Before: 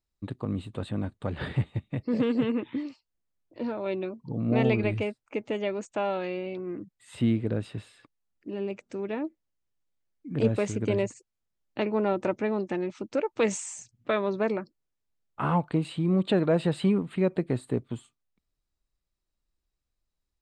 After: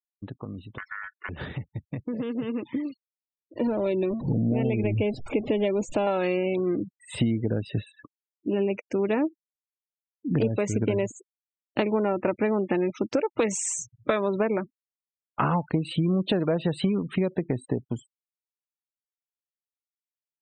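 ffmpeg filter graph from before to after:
-filter_complex "[0:a]asettb=1/sr,asplit=3[s0][s1][s2];[s0]atrim=end=0.784[s3];[s1]atrim=start=0.78:end=1.29,asetpts=PTS-STARTPTS,afade=t=in:d=0.004:c=qsin,afade=t=out:st=0.506:d=0.004:c=qsin,lowpass=f=1200:p=1,aeval=exprs='val(0)*sin(2*PI*1600*n/s)':c=same[s4];[s2]atrim=start=1.286[s5];[s3][s4]acrossfade=d=0.004:c1=hsin:c2=qsin[s6];[s6][s5]acrossfade=d=0.004:c1=qsin:c2=hsin,asettb=1/sr,asplit=3[s7][s8][s9];[s7]atrim=end=3.674[s10];[s8]atrim=start=3.67:end=6.07,asetpts=PTS-STARTPTS,afade=t=in:d=0.004:c=qsin,afade=t=out:st=2.396:d=0.004:c=qsin,aeval=exprs='val(0)+0.5*0.0133*sgn(val(0))':c=same,acrossover=split=4200[s11][s12];[s12]acompressor=threshold=0.00251:ratio=4:attack=1:release=60[s13];[s11][s13]amix=inputs=2:normalize=0,equalizer=f=1400:t=o:w=1.8:g=-9.5[s14];[s9]atrim=start=6.066[s15];[s10][s14]acrossfade=d=0.004:c1=hsin:c2=qsin[s16];[s16][s15]acrossfade=d=0.004:c1=qsin:c2=hsin,acompressor=threshold=0.0282:ratio=12,afftfilt=real='re*gte(hypot(re,im),0.00398)':imag='im*gte(hypot(re,im),0.00398)':win_size=1024:overlap=0.75,dynaudnorm=f=430:g=13:m=3.76,volume=0.891"

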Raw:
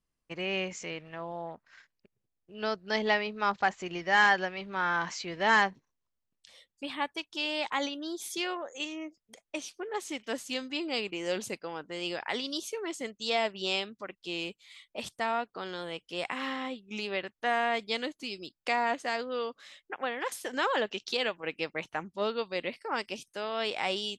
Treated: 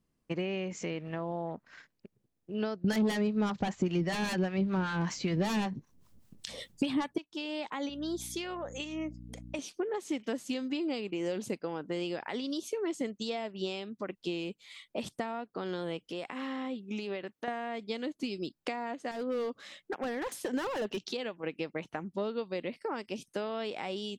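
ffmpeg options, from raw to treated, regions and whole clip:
-filter_complex "[0:a]asettb=1/sr,asplit=3[s0][s1][s2];[s0]atrim=end=2.844[s3];[s1]atrim=start=2.84:end=7.18,asetpts=PTS-STARTPTS,afade=t=in:d=0.004:c=qsin,afade=t=out:st=4.336:d=0.004:c=qsin,bass=f=250:g=10,treble=f=4000:g=4,acrossover=split=730[s4][s5];[s4]aeval=exprs='val(0)*(1-0.7/2+0.7/2*cos(2*PI*5.1*n/s))':c=same[s6];[s5]aeval=exprs='val(0)*(1-0.7/2-0.7/2*cos(2*PI*5.1*n/s))':c=same[s7];[s6][s7]amix=inputs=2:normalize=0,aeval=exprs='0.224*sin(PI/2*4.47*val(0)/0.224)':c=same[s8];[s2]atrim=start=7.176[s9];[s3][s8]acrossfade=d=0.004:c1=hsin:c2=qsin[s10];[s10][s9]acrossfade=d=0.004:c1=qsin:c2=hsin,asettb=1/sr,asplit=3[s11][s12][s13];[s11]atrim=end=7.894[s14];[s12]atrim=start=7.89:end=9.59,asetpts=PTS-STARTPTS,afade=t=in:d=0.004:c=qsin,afade=t=out:st=1.696:d=0.004:c=qsin,highpass=f=550:p=1,aeval=exprs='val(0)+0.002*(sin(2*PI*60*n/s)+sin(2*PI*2*60*n/s)/2+sin(2*PI*3*60*n/s)/3+sin(2*PI*4*60*n/s)/4+sin(2*PI*5*60*n/s)/5)':c=same[s15];[s13]atrim=start=9.586[s16];[s14][s15]acrossfade=d=0.004:c1=hsin:c2=qsin[s17];[s17][s16]acrossfade=d=0.004:c1=qsin:c2=hsin,asettb=1/sr,asplit=3[s18][s19][s20];[s18]atrim=end=16.114[s21];[s19]atrim=start=16.11:end=17.48,asetpts=PTS-STARTPTS,afade=t=in:d=0.004:c=qsin,afade=t=out:st=1.366:d=0.004:c=qsin,highpass=f=180:p=1,acompressor=threshold=0.00501:ratio=2:attack=3.2:release=140:knee=1:detection=peak[s22];[s20]atrim=start=17.476[s23];[s21][s22]acrossfade=d=0.004:c1=hsin:c2=qsin[s24];[s24][s23]acrossfade=d=0.004:c1=qsin:c2=hsin,asettb=1/sr,asplit=3[s25][s26][s27];[s25]atrim=end=19.114[s28];[s26]atrim=start=19.11:end=21.01,asetpts=PTS-STARTPTS,afade=t=in:d=0.004:c=qsin,afade=t=out:st=1.896:d=0.004:c=qsin,bandreject=f=60:t=h:w=6,bandreject=f=120:t=h:w=6,bandreject=f=180:t=h:w=6,asoftclip=type=hard:threshold=0.0237[s29];[s27]atrim=start=21.006[s30];[s28][s29]acrossfade=d=0.004:c1=hsin:c2=qsin[s31];[s31][s30]acrossfade=d=0.004:c1=qsin:c2=hsin,acompressor=threshold=0.01:ratio=6,equalizer=f=220:t=o:w=2.9:g=11.5,volume=1.19"

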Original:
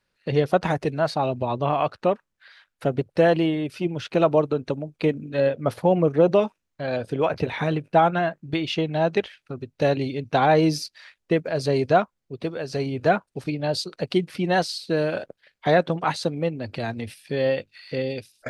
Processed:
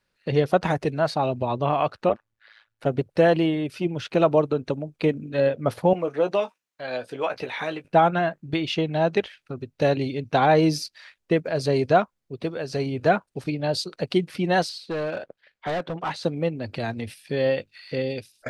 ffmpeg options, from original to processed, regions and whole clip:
-filter_complex "[0:a]asettb=1/sr,asplit=3[s0][s1][s2];[s0]atrim=end=2.094[s3];[s1]atrim=start=2.09:end=2.86,asetpts=PTS-STARTPTS,afade=t=in:d=0.004:c=qsin,afade=t=out:st=0.766:d=0.004:c=qsin,highshelf=f=5900:g=-8.5,aecho=1:1:3.5:0.83,atrim=end_sample=33957,tremolo=f=110:d=0.919[s4];[s2]atrim=start=2.856[s5];[s3][s4]acrossfade=d=0.004:c1=hsin:c2=qsin[s6];[s6][s5]acrossfade=d=0.004:c1=qsin:c2=hsin,asettb=1/sr,asplit=3[s7][s8][s9];[s7]atrim=end=5.934[s10];[s8]atrim=start=5.93:end=7.85,asetpts=PTS-STARTPTS,afade=t=in:d=0.004:c=qsin,afade=t=out:st=1.916:d=0.004:c=qsin,highpass=f=770:p=1,asplit=2[s11][s12];[s12]adelay=16,volume=0.335[s13];[s11][s13]amix=inputs=2:normalize=0,atrim=end_sample=84672[s14];[s9]atrim=start=7.846[s15];[s10][s14]acrossfade=d=0.004:c1=hsin:c2=qsin[s16];[s16][s15]acrossfade=d=0.004:c1=qsin:c2=hsin,asettb=1/sr,asplit=3[s17][s18][s19];[s17]atrim=end=14.694[s20];[s18]atrim=start=14.69:end=16.24,asetpts=PTS-STARTPTS,afade=t=in:d=0.004:c=qsin,afade=t=out:st=1.546:d=0.004:c=qsin,volume=11.2,asoftclip=hard,volume=0.0891,asplit=2[s21][s22];[s22]highpass=f=720:p=1,volume=1.41,asoftclip=type=tanh:threshold=0.0891[s23];[s21][s23]amix=inputs=2:normalize=0,lowpass=f=2600:p=1,volume=0.501[s24];[s19]atrim=start=16.236[s25];[s20][s24]acrossfade=d=0.004:c1=hsin:c2=qsin[s26];[s26][s25]acrossfade=d=0.004:c1=qsin:c2=hsin"

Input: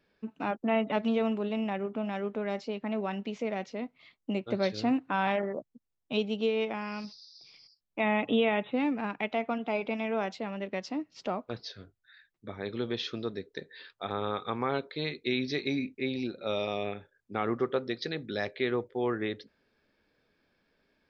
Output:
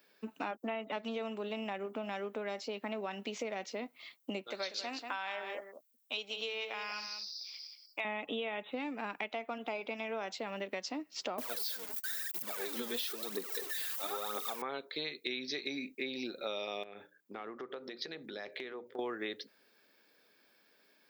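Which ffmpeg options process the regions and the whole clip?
-filter_complex "[0:a]asettb=1/sr,asplit=3[s0][s1][s2];[s0]atrim=end=4.474[s3];[s1]atrim=start=4.47:end=8.05,asetpts=PTS-STARTPTS,afade=t=in:d=0.004:c=qsin,afade=t=out:st=3.576:d=0.004:c=qsin,highpass=f=1300:p=1,aecho=1:1:188:0.299,atrim=end_sample=157878[s4];[s2]atrim=start=8.046[s5];[s3][s4]acrossfade=d=0.004:c1=hsin:c2=qsin[s6];[s6][s5]acrossfade=d=0.004:c1=qsin:c2=hsin,asettb=1/sr,asplit=3[s7][s8][s9];[s7]atrim=end=11.384[s10];[s8]atrim=start=11.38:end=14.62,asetpts=PTS-STARTPTS,afade=t=in:d=0.004:c=qsin,afade=t=out:st=3.236:d=0.004:c=qsin,aeval=exprs='val(0)+0.5*0.015*sgn(val(0))':c=same,highpass=170,aphaser=in_gain=1:out_gain=1:delay=5:decay=0.67:speed=1:type=triangular[s11];[s9]atrim=start=14.616[s12];[s10][s11]acrossfade=d=0.004:c1=hsin:c2=qsin[s13];[s13][s12]acrossfade=d=0.004:c1=qsin:c2=hsin,asettb=1/sr,asplit=3[s14][s15][s16];[s14]atrim=end=16.834[s17];[s15]atrim=start=16.83:end=18.99,asetpts=PTS-STARTPTS,afade=t=in:d=0.004:c=qsin,afade=t=out:st=2.156:d=0.004:c=qsin,highshelf=f=3800:g=-9,acompressor=threshold=0.01:ratio=12:attack=3.2:release=140:knee=1:detection=peak,bandreject=f=60:t=h:w=6,bandreject=f=120:t=h:w=6,bandreject=f=180:t=h:w=6,bandreject=f=240:t=h:w=6,bandreject=f=300:t=h:w=6,bandreject=f=360:t=h:w=6[s18];[s16]atrim=start=18.986[s19];[s17][s18]acrossfade=d=0.004:c1=hsin:c2=qsin[s20];[s20][s19]acrossfade=d=0.004:c1=qsin:c2=hsin,highpass=190,aemphasis=mode=production:type=bsi,acompressor=threshold=0.0112:ratio=6,volume=1.5"

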